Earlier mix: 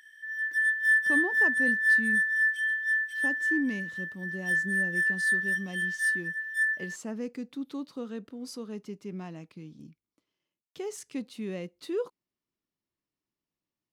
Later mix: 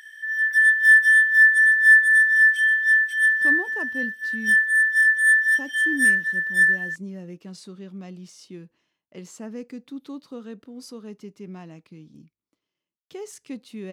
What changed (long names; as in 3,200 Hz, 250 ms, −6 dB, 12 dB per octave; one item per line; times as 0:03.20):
speech: entry +2.35 s
background +9.5 dB